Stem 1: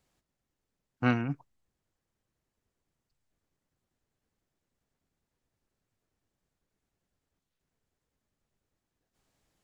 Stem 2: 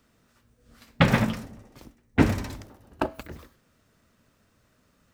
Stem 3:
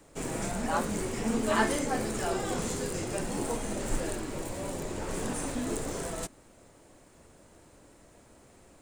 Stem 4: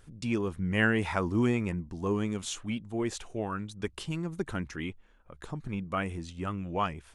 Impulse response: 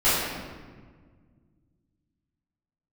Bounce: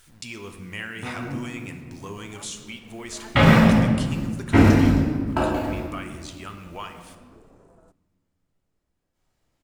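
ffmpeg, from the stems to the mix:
-filter_complex "[0:a]acompressor=threshold=-29dB:ratio=6,volume=-7.5dB,asplit=2[link_01][link_02];[link_02]volume=-8.5dB[link_03];[1:a]agate=range=-9dB:threshold=-58dB:ratio=16:detection=peak,adelay=2350,volume=-4.5dB,asplit=2[link_04][link_05];[link_05]volume=-7dB[link_06];[2:a]afwtdn=0.00891,adelay=1650,volume=-18.5dB[link_07];[3:a]tiltshelf=frequency=1300:gain=-9,acompressor=threshold=-37dB:ratio=3,acrusher=bits=9:mix=0:aa=0.000001,volume=1.5dB,asplit=2[link_08][link_09];[link_09]volume=-22.5dB[link_10];[4:a]atrim=start_sample=2205[link_11];[link_03][link_06][link_10]amix=inputs=3:normalize=0[link_12];[link_12][link_11]afir=irnorm=-1:irlink=0[link_13];[link_01][link_04][link_07][link_08][link_13]amix=inputs=5:normalize=0"

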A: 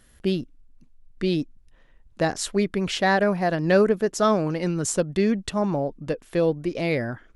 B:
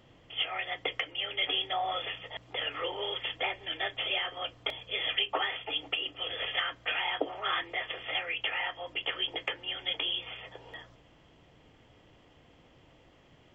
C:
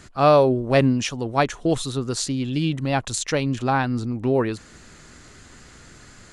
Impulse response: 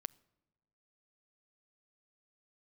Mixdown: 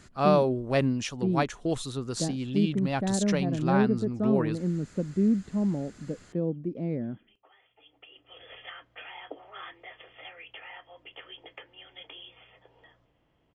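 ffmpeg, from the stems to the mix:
-filter_complex "[0:a]bandpass=frequency=210:width_type=q:width=1.8:csg=0,volume=0dB,asplit=2[link_01][link_02];[1:a]highshelf=frequency=4000:gain=-11.5,adelay=2100,volume=-10dB[link_03];[2:a]volume=-7.5dB[link_04];[link_02]apad=whole_len=689767[link_05];[link_03][link_05]sidechaincompress=threshold=-57dB:ratio=10:attack=5.1:release=725[link_06];[link_01][link_06][link_04]amix=inputs=3:normalize=0"

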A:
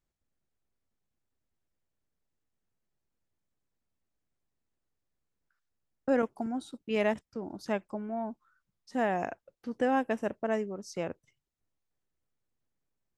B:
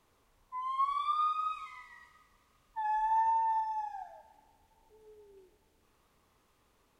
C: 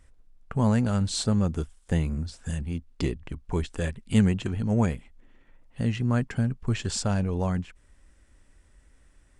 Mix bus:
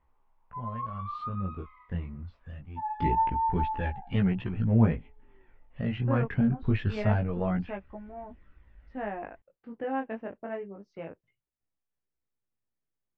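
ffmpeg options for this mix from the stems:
ffmpeg -i stem1.wav -i stem2.wav -i stem3.wav -filter_complex "[0:a]volume=-3dB[link_01];[1:a]equalizer=frequency=890:width=2.1:gain=13.5,flanger=delay=6:depth=6.9:regen=-50:speed=0.4:shape=triangular,volume=-5.5dB[link_02];[2:a]dynaudnorm=framelen=900:gausssize=3:maxgain=8dB,aphaser=in_gain=1:out_gain=1:delay=1.8:decay=0.39:speed=0.61:type=triangular,volume=-6dB,afade=type=in:start_time=2.91:duration=0.2:silence=0.334965[link_03];[link_01][link_02][link_03]amix=inputs=3:normalize=0,lowpass=frequency=2800:width=0.5412,lowpass=frequency=2800:width=1.3066,flanger=delay=15.5:depth=6.9:speed=0.25" out.wav

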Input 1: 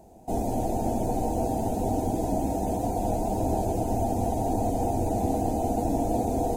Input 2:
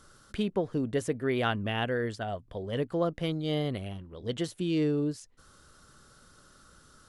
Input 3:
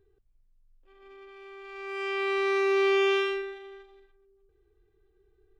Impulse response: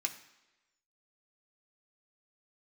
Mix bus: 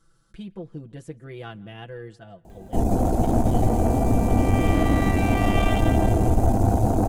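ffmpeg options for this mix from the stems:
-filter_complex "[0:a]adelay=2450,volume=2dB,asplit=2[link_01][link_02];[link_02]volume=-4dB[link_03];[1:a]aecho=1:1:6:0.94,volume=-13dB,asplit=3[link_04][link_05][link_06];[link_05]volume=-18.5dB[link_07];[link_06]volume=-24dB[link_08];[2:a]highpass=910,acompressor=mode=upward:threshold=-43dB:ratio=2.5,adelay=2500,volume=-3.5dB,asplit=3[link_09][link_10][link_11];[link_10]volume=-4dB[link_12];[link_11]volume=-3dB[link_13];[3:a]atrim=start_sample=2205[link_14];[link_07][link_12]amix=inputs=2:normalize=0[link_15];[link_15][link_14]afir=irnorm=-1:irlink=0[link_16];[link_03][link_08][link_13]amix=inputs=3:normalize=0,aecho=0:1:165|330|495|660|825|990|1155:1|0.47|0.221|0.104|0.0488|0.0229|0.0108[link_17];[link_01][link_04][link_09][link_16][link_17]amix=inputs=5:normalize=0,lowshelf=frequency=240:gain=11,aeval=exprs='(tanh(3.55*val(0)+0.45)-tanh(0.45))/3.55':channel_layout=same"

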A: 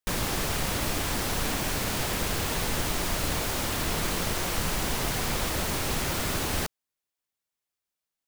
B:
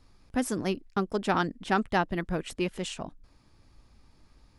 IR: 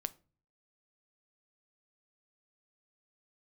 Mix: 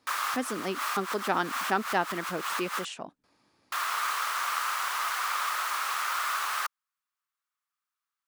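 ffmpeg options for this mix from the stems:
-filter_complex "[0:a]highpass=frequency=1200:width_type=q:width=4.7,volume=-5.5dB,asplit=3[link_01][link_02][link_03];[link_01]atrim=end=2.85,asetpts=PTS-STARTPTS,afade=type=out:start_time=2.846:duration=0.004:curve=hsin[link_04];[link_02]atrim=start=2.85:end=3.72,asetpts=PTS-STARTPTS,volume=0[link_05];[link_03]atrim=start=3.72,asetpts=PTS-STARTPTS,afade=type=in:duration=0.004:curve=hsin[link_06];[link_04][link_05][link_06]concat=n=3:v=0:a=1[link_07];[1:a]volume=-3dB,asplit=2[link_08][link_09];[link_09]apad=whole_len=364748[link_10];[link_07][link_10]sidechaincompress=threshold=-39dB:ratio=12:attack=6.8:release=103[link_11];[link_11][link_08]amix=inputs=2:normalize=0,highpass=230,equalizer=frequency=1300:width_type=o:width=2.8:gain=3"

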